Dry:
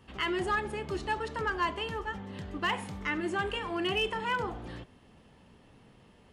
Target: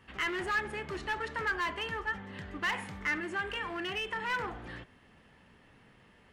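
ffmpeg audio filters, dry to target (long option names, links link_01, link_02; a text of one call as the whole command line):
ffmpeg -i in.wav -filter_complex "[0:a]asettb=1/sr,asplit=3[link_01][link_02][link_03];[link_01]atrim=end=3.184[link_04];[link_02]atrim=start=3.18:end=4.3,asetpts=PTS-STARTPTS,afade=type=in:duration=0.004:curve=qsin,afade=type=out:start_time=1.116:duration=0.004:curve=qsin,acompressor=threshold=-31dB:ratio=5[link_05];[link_03]atrim=start=4.296[link_06];[link_04][link_05]acrossfade=duration=0.004:curve1=hsin:curve2=qsin[link_07];[link_07][link_06]acrossfade=duration=0.004:curve1=qsin:curve2=hsin,asoftclip=type=hard:threshold=-30dB,equalizer=frequency=1800:width=1.2:gain=10,volume=-4dB" out.wav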